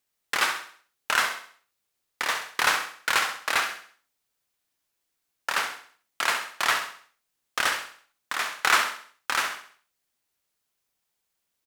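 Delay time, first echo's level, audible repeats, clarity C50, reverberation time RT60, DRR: 66 ms, -9.0 dB, 4, no reverb, no reverb, no reverb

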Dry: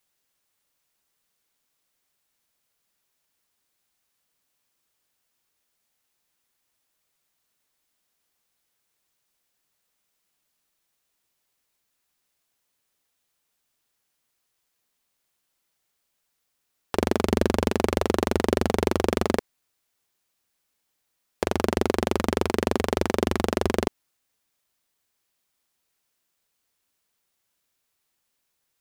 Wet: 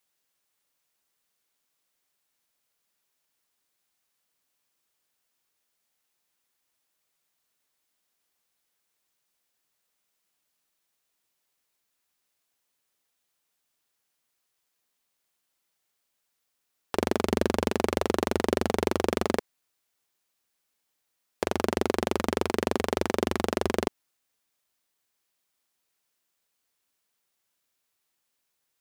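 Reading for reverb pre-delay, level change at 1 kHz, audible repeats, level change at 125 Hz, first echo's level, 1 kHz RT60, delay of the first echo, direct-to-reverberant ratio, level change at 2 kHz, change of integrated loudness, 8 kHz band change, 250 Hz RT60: no reverb, -2.0 dB, no echo, -6.0 dB, no echo, no reverb, no echo, no reverb, -2.0 dB, -3.0 dB, -2.0 dB, no reverb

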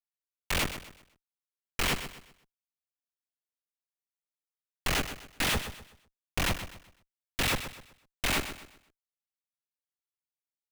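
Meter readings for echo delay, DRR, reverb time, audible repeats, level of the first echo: 126 ms, no reverb, no reverb, 3, -11.0 dB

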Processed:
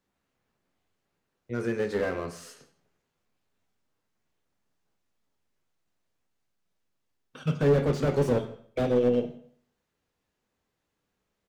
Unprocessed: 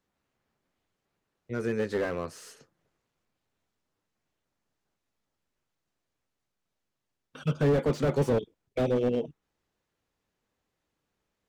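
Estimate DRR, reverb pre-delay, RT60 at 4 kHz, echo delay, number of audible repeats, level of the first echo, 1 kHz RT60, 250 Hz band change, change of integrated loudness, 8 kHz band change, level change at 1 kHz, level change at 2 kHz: 6.0 dB, 12 ms, 0.50 s, 160 ms, 1, -24.5 dB, 0.55 s, +1.5 dB, +1.5 dB, +0.5 dB, +1.0 dB, +1.0 dB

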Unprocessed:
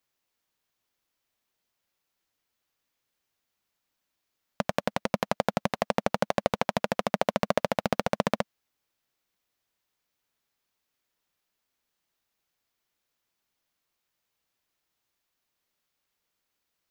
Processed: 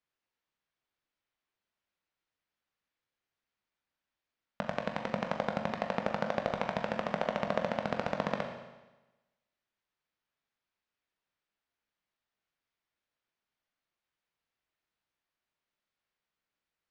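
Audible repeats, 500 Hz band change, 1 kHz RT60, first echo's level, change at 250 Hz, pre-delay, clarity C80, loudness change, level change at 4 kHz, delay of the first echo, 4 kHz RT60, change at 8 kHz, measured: no echo, -5.5 dB, 1.1 s, no echo, -5.5 dB, 18 ms, 8.0 dB, -5.5 dB, -8.0 dB, no echo, 1.1 s, under -10 dB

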